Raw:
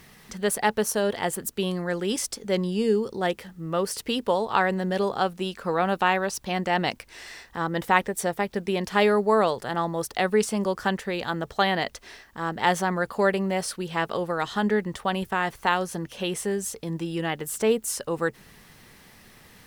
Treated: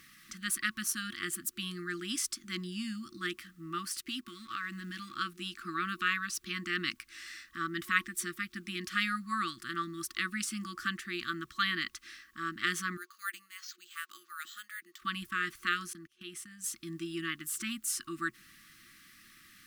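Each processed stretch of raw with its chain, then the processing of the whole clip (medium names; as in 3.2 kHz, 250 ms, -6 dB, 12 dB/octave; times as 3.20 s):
3.88–5.16 s: companding laws mixed up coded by A + compression, threshold -24 dBFS
12.97–15.02 s: pre-emphasis filter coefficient 0.9 + LFO high-pass saw up 2.7 Hz 300–1800 Hz + careless resampling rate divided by 4×, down filtered, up hold
15.93–16.64 s: gate -36 dBFS, range -24 dB + compression 3:1, threshold -37 dBFS
whole clip: FFT band-reject 360–1100 Hz; tone controls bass -12 dB, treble 0 dB; trim -4 dB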